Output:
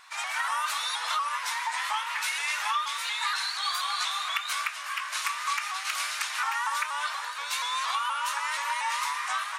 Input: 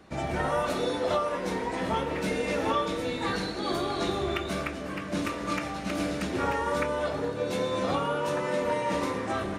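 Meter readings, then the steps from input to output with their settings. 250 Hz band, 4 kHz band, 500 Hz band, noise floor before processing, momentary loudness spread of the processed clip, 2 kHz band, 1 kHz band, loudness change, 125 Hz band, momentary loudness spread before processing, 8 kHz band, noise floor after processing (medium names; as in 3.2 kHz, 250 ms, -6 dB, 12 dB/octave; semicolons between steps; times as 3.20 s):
under -40 dB, +7.0 dB, -25.5 dB, -36 dBFS, 3 LU, +5.5 dB, +2.0 dB, +0.5 dB, under -40 dB, 4 LU, +9.5 dB, -36 dBFS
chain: elliptic high-pass 1 kHz, stop band 70 dB; treble shelf 6 kHz +8 dB; compression 3:1, threshold -34 dBFS, peak gain reduction 7.5 dB; vibrato with a chosen wave saw up 4.2 Hz, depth 100 cents; trim +7.5 dB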